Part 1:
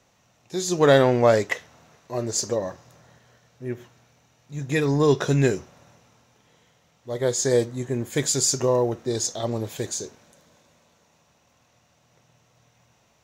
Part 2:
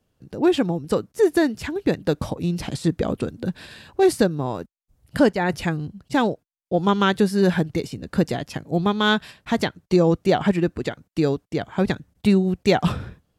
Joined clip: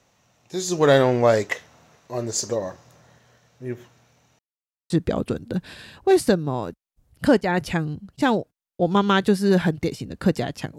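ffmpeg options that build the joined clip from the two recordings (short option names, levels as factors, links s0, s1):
-filter_complex "[0:a]apad=whole_dur=10.78,atrim=end=10.78,asplit=2[s0][s1];[s0]atrim=end=4.39,asetpts=PTS-STARTPTS,afade=t=out:st=4.386:d=0.004:c=hsin[s2];[s1]atrim=start=4.39:end=4.9,asetpts=PTS-STARTPTS,volume=0[s3];[1:a]atrim=start=2.82:end=8.7,asetpts=PTS-STARTPTS,afade=t=in:d=0.004:c=hsin[s4];[s2][s3][s4]concat=n=3:v=0:a=1"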